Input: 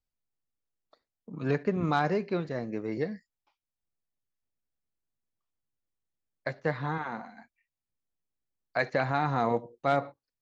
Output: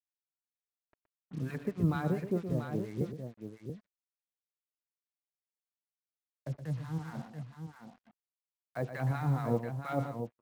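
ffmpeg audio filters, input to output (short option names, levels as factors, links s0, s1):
-filter_complex "[0:a]highpass=f=57:w=0.5412,highpass=f=57:w=1.3066,aemphasis=mode=reproduction:type=riaa,asettb=1/sr,asplit=3[s0][s1][s2];[s0]atrim=end=3.014[s3];[s1]atrim=start=3.01:end=7.08,asetpts=PTS-STARTPTS,afade=t=in:d=0.004:c=qsin,afade=t=out:st=4.066:d=0.004:c=qsin,acrossover=split=290|3000[s4][s5][s6];[s5]acompressor=threshold=0.0158:ratio=6[s7];[s4][s7][s6]amix=inputs=3:normalize=0[s8];[s2]atrim=start=7.076[s9];[s3][s8]acrossfade=d=0.004:c1=hsin:c2=qsin[s10];[s10][s9]acrossfade=d=0.004:c1=qsin:c2=hsin,acrossover=split=1000[s11][s12];[s11]aeval=exprs='val(0)*(1-1/2+1/2*cos(2*PI*4.3*n/s))':c=same[s13];[s12]aeval=exprs='val(0)*(1-1/2-1/2*cos(2*PI*4.3*n/s))':c=same[s14];[s13][s14]amix=inputs=2:normalize=0,acrusher=bits=7:mix=0:aa=0.5,aecho=1:1:120|683:0.316|0.422,volume=0.531"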